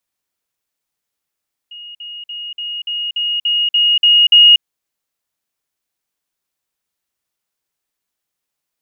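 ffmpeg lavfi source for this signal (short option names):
-f lavfi -i "aevalsrc='pow(10,(-30.5+3*floor(t/0.29))/20)*sin(2*PI*2870*t)*clip(min(mod(t,0.29),0.24-mod(t,0.29))/0.005,0,1)':d=2.9:s=44100"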